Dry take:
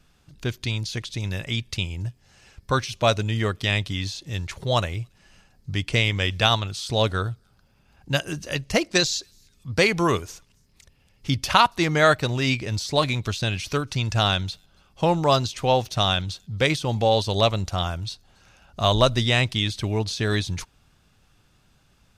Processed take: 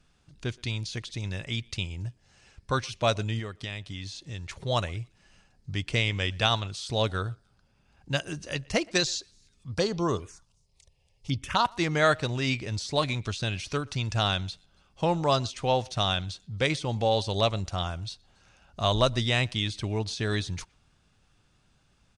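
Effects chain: 3.39–4.48 s: compression 4:1, threshold -29 dBFS, peak gain reduction 9.5 dB; 9.74–11.65 s: touch-sensitive phaser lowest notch 240 Hz, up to 2.3 kHz, full sweep at -17 dBFS; resampled via 22.05 kHz; speakerphone echo 120 ms, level -26 dB; trim -5 dB

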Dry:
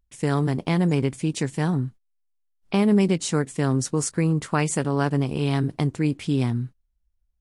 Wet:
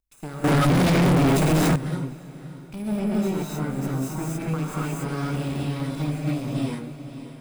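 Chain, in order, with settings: comb filter that takes the minimum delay 0.79 ms; bass shelf 290 Hz -5 dB; 1.91–2.87 s: time-frequency box 250–7800 Hz -8 dB; treble shelf 6.1 kHz +10.5 dB; gated-style reverb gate 310 ms rising, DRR -6.5 dB; de-esser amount 80%; echo that smears into a reverb 570 ms, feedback 41%, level -11.5 dB; 0.44–1.76 s: waveshaping leveller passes 5; trim -6.5 dB

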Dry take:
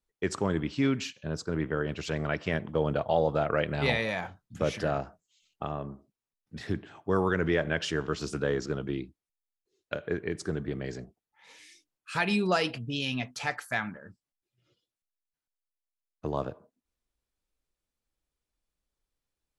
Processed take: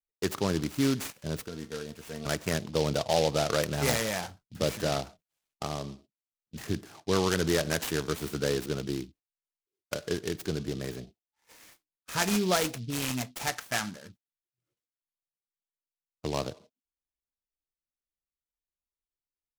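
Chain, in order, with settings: gate -54 dBFS, range -16 dB; 1.48–2.26 s: feedback comb 230 Hz, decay 0.17 s, harmonics all, mix 80%; delay time shaken by noise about 3.8 kHz, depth 0.084 ms

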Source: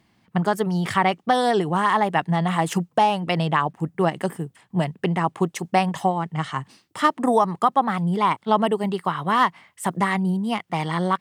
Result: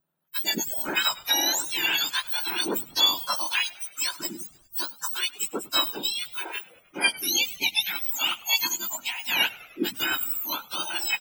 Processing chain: spectrum inverted on a logarithmic axis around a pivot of 1.7 kHz; spectral noise reduction 17 dB; on a send: frequency-shifting echo 101 ms, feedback 62%, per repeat -83 Hz, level -21 dB

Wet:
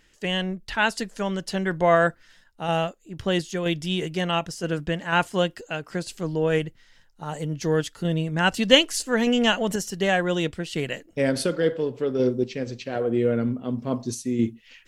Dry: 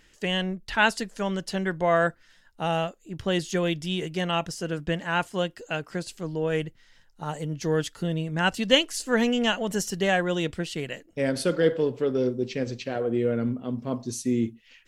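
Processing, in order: random-step tremolo 4.1 Hz; trim +4.5 dB

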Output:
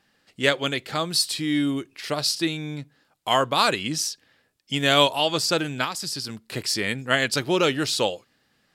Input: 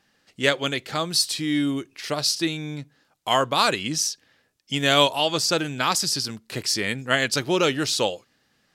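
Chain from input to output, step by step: peaking EQ 6.1 kHz -4.5 dB 0.32 oct; 5.84–6.48 s: compression 12:1, threshold -26 dBFS, peak gain reduction 10 dB

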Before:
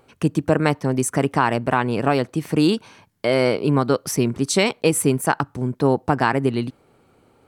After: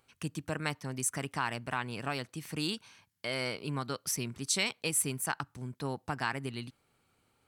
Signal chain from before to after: amplifier tone stack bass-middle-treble 5-5-5

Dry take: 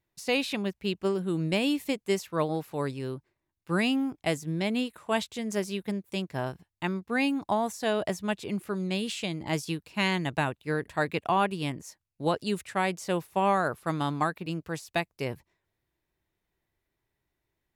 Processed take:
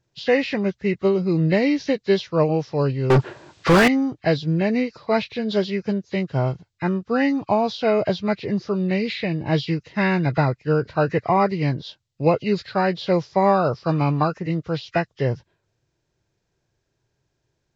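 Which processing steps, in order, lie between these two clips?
knee-point frequency compression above 1.1 kHz 1.5:1; graphic EQ 125/500/4000 Hz +11/+7/+6 dB; 3.10–3.88 s: overdrive pedal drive 44 dB, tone 1.8 kHz, clips at -10 dBFS; trim +3.5 dB

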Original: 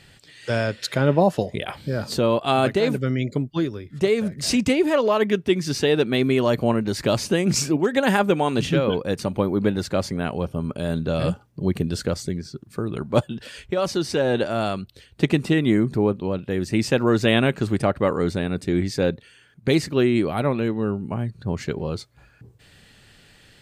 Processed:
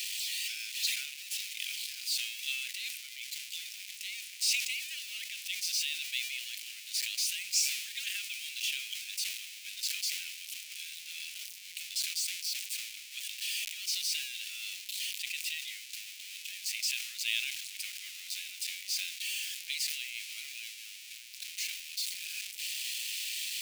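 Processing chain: jump at every zero crossing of -20 dBFS; elliptic high-pass 2.4 kHz, stop band 60 dB; decay stretcher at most 58 dB/s; trim -8 dB

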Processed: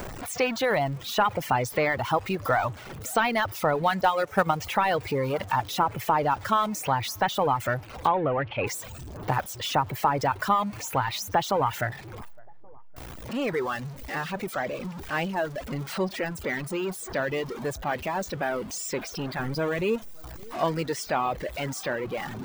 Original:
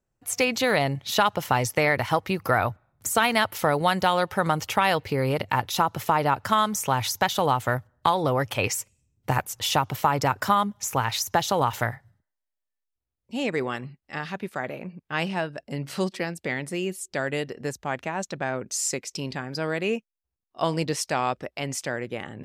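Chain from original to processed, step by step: jump at every zero crossing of -25 dBFS; 4.01–4.51 s: transient shaper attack +7 dB, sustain -10 dB; bass shelf 470 Hz -9.5 dB; de-esser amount 100%; 8.07–8.67 s: low-pass 3 kHz 24 dB/octave; 19.39–19.96 s: bass shelf 200 Hz +8 dB; on a send: tape echo 563 ms, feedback 48%, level -19 dB, low-pass 1.1 kHz; on the sum: reverb removal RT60 1.1 s; trim +3.5 dB

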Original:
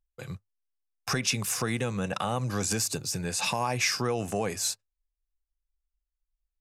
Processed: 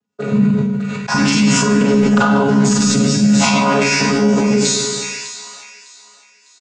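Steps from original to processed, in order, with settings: vocoder on a held chord bare fifth, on C#3; comb 4.1 ms, depth 56%; compressor with a negative ratio -30 dBFS, ratio -0.5; on a send: feedback echo behind a high-pass 603 ms, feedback 43%, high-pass 1.5 kHz, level -15.5 dB; on the sum: Schroeder reverb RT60 1.1 s, combs from 31 ms, DRR -4 dB; loudness maximiser +20 dB; decay stretcher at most 23 dB/s; trim -4.5 dB

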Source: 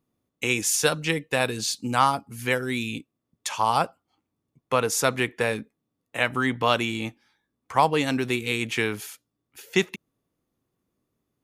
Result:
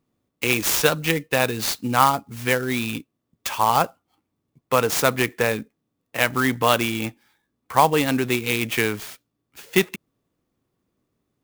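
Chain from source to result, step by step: sampling jitter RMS 0.029 ms; trim +3.5 dB

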